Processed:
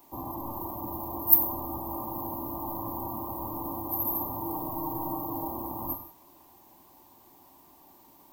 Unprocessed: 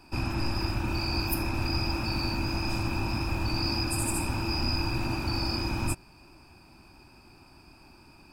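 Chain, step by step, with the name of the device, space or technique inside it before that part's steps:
brick-wall band-stop 1,200–12,000 Hz
turntable without a phono preamp (RIAA equalisation recording; white noise bed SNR 32 dB)
0:04.42–0:05.48: comb filter 6.4 ms, depth 69%
low-shelf EQ 180 Hz −3.5 dB
reverb whose tail is shaped and stops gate 220 ms falling, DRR 5 dB
level +1 dB

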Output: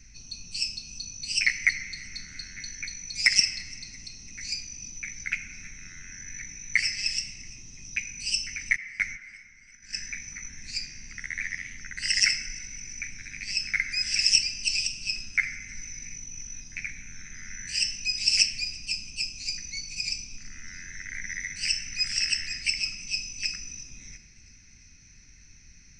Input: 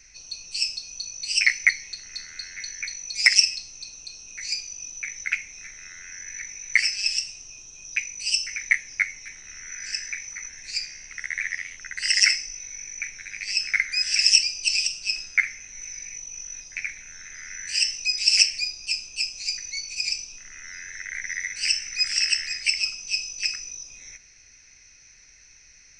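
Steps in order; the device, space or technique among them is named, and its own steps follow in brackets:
0:08.76–0:10.01: noise gate −33 dBFS, range −18 dB
filtered reverb send (on a send at −11.5 dB: high-pass filter 220 Hz + low-pass filter 3,200 Hz + convolution reverb RT60 2.3 s, pre-delay 69 ms)
on the sum: low shelf with overshoot 340 Hz +13.5 dB, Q 1.5
delay with a high-pass on its return 340 ms, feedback 58%, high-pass 2,100 Hz, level −24 dB
level −4 dB

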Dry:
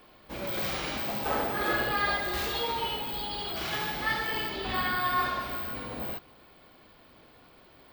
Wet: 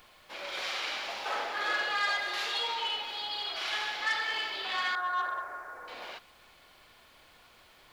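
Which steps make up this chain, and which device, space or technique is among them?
0:04.95–0:05.88: elliptic band-pass filter 320–1,600 Hz
aircraft cabin announcement (band-pass filter 470–4,000 Hz; soft clipping −22 dBFS, distortion −21 dB; brown noise bed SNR 17 dB)
spectral tilt +3.5 dB per octave
level −1.5 dB

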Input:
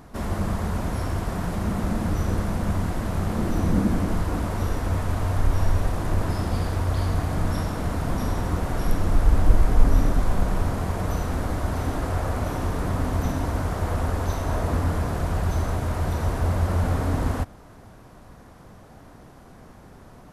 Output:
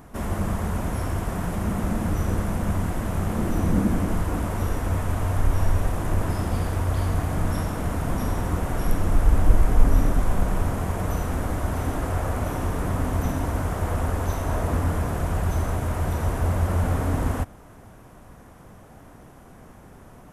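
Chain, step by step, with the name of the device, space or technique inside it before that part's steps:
exciter from parts (in parallel at −4 dB: high-pass filter 2,100 Hz 6 dB per octave + soft clipping −27.5 dBFS, distortion −28 dB + high-pass filter 3,700 Hz 24 dB per octave)

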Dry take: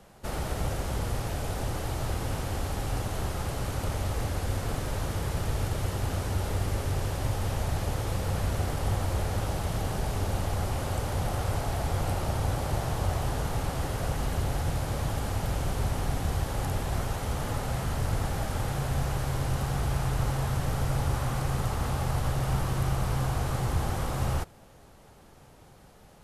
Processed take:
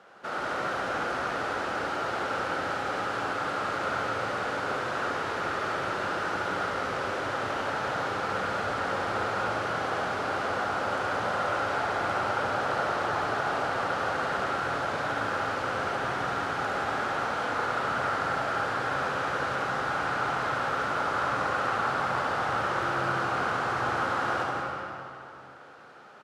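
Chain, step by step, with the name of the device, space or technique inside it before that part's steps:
station announcement (band-pass filter 320–4,200 Hz; parametric band 1,400 Hz +12 dB 0.47 octaves; loudspeakers that aren't time-aligned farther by 24 metres −4 dB, 58 metres −9 dB; convolution reverb RT60 2.7 s, pre-delay 118 ms, DRR 0.5 dB)

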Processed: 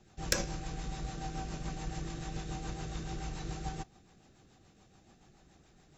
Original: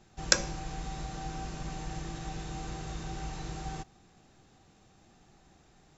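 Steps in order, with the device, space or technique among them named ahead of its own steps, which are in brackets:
overdriven rotary cabinet (tube saturation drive 15 dB, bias 0.65; rotating-speaker cabinet horn 7 Hz)
level +4.5 dB

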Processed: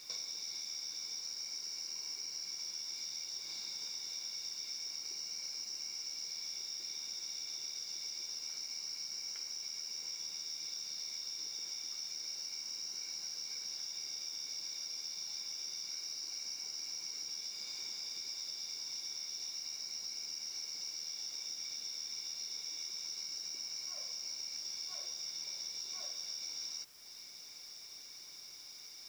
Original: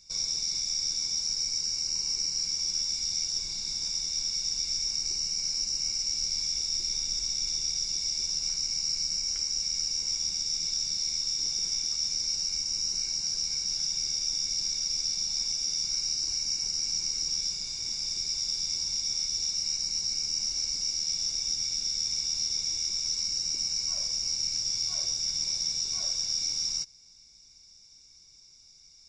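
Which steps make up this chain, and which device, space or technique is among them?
baby monitor (band-pass filter 370–4,000 Hz; downward compressor, threshold −52 dBFS, peak gain reduction 18 dB; white noise bed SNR 20 dB)
level +10.5 dB

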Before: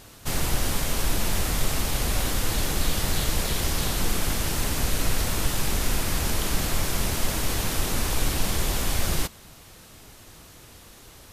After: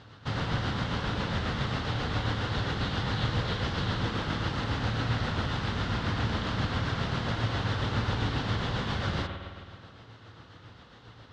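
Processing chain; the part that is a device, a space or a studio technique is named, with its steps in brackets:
combo amplifier with spring reverb and tremolo (spring reverb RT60 2 s, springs 53 ms, chirp 50 ms, DRR 5 dB; amplitude tremolo 7.4 Hz, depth 35%; loudspeaker in its box 84–3,900 Hz, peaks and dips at 110 Hz +8 dB, 360 Hz −5 dB, 640 Hz −4 dB, 1,400 Hz +3 dB, 2,400 Hz −8 dB)

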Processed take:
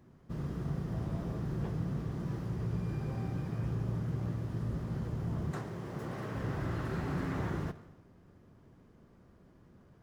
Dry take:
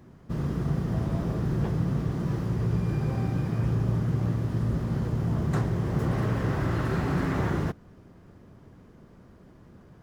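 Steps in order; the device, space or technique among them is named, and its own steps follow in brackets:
saturated reverb return (on a send at −10.5 dB: convolution reverb RT60 0.80 s, pre-delay 56 ms + soft clipping −28 dBFS, distortion −10 dB)
0:05.51–0:06.35: on the sum: high-pass filter 250 Hz 6 dB per octave
level −8.5 dB

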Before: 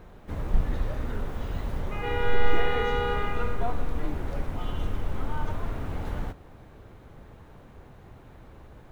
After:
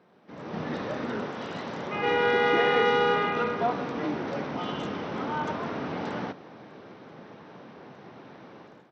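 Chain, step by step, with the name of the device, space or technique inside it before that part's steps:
0:01.26–0:01.94: low-shelf EQ 460 Hz −4 dB
Bluetooth headset (high-pass filter 170 Hz 24 dB per octave; automatic gain control gain up to 15 dB; downsampling to 16,000 Hz; level −8.5 dB; SBC 64 kbit/s 32,000 Hz)

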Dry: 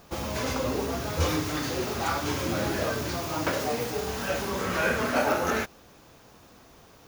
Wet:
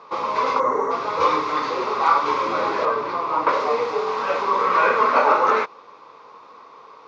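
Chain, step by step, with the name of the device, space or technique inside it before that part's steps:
bass and treble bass +4 dB, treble +11 dB
0:02.85–0:03.49: low-pass filter 2,200 Hz 6 dB per octave
phone earpiece (loudspeaker in its box 400–4,000 Hz, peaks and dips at 450 Hz +7 dB, 710 Hz −7 dB, 1,100 Hz +8 dB, 1,700 Hz −10 dB, 3,000 Hz −7 dB)
0:00.60–0:00.91: gain on a spectral selection 2,200–5,500 Hz −17 dB
graphic EQ with 10 bands 125 Hz +4 dB, 500 Hz +3 dB, 1,000 Hz +12 dB, 2,000 Hz +7 dB, 16,000 Hz −9 dB

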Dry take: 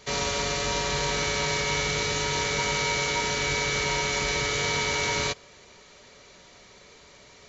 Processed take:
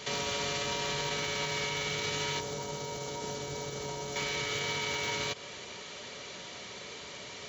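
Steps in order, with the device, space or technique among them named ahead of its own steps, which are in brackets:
broadcast voice chain (high-pass filter 96 Hz 12 dB per octave; de-essing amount 70%; downward compressor, threshold −31 dBFS, peak gain reduction 7.5 dB; parametric band 3,100 Hz +5.5 dB 0.44 octaves; brickwall limiter −31 dBFS, peak gain reduction 10 dB)
0:02.40–0:04.16: drawn EQ curve 710 Hz 0 dB, 2,300 Hz −14 dB, 6,100 Hz −3 dB
level +6.5 dB

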